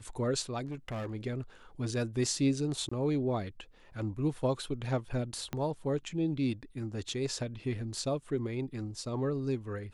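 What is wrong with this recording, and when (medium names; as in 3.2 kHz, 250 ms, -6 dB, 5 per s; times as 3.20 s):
0.65–1.15 s: clipped -34 dBFS
2.89–2.92 s: dropout 25 ms
5.53 s: pop -21 dBFS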